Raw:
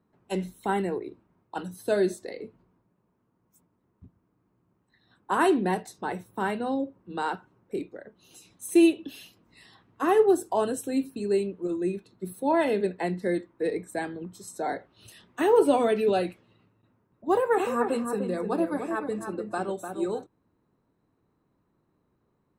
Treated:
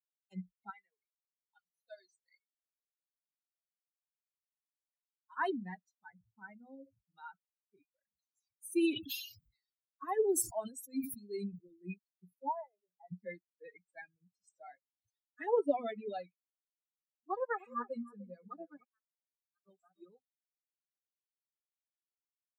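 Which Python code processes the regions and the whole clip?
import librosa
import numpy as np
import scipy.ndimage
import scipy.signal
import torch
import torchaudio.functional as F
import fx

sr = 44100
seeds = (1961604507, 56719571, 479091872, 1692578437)

y = fx.chain(x, sr, fx.highpass(hz=1200.0, slope=6),
    fx.band_squash(depth_pct=40), at=(0.7, 5.37))
y = fx.chain(y, sr, fx.lowpass(hz=1800.0, slope=6),
    fx.sustainer(db_per_s=99.0), at=(6.1, 7.13))
y = fx.chain(y, sr, fx.high_shelf(hz=8100.0, db=8.0),
    fx.sustainer(db_per_s=43.0), at=(7.88, 11.94))
y = fx.chain(y, sr, fx.bandpass_q(hz=850.0, q=2.7),
    fx.sustainer(db_per_s=94.0), at=(12.49, 13.12))
y = fx.chain(y, sr, fx.tone_stack(knobs='5-5-5'),
    fx.level_steps(step_db=15),
    fx.doubler(ms=49.0, db=-9.5), at=(18.84, 19.66))
y = fx.bin_expand(y, sr, power=3.0)
y = fx.low_shelf(y, sr, hz=400.0, db=-4.5)
y = fx.rider(y, sr, range_db=4, speed_s=2.0)
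y = F.gain(torch.from_numpy(y), -6.5).numpy()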